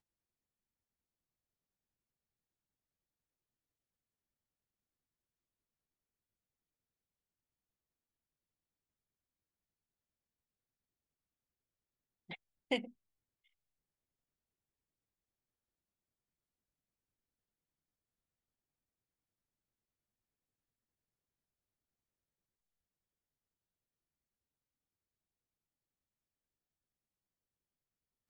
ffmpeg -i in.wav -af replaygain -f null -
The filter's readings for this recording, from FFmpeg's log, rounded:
track_gain = +64.0 dB
track_peak = 0.092